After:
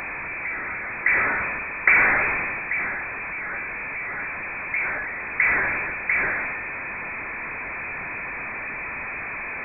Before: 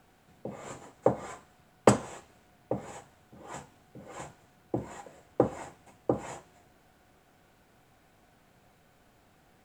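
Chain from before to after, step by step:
converter with a step at zero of −25 dBFS
voice inversion scrambler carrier 2,500 Hz
level that may fall only so fast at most 23 dB per second

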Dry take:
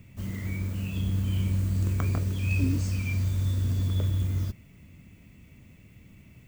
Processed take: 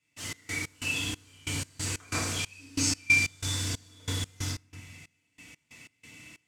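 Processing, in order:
meter weighting curve ITU-R 468
feedback delay network reverb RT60 1 s, low-frequency decay 1.5×, high-frequency decay 0.55×, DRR −8.5 dB
gate pattern ".x.x.xx." 92 BPM −24 dB
level −2 dB

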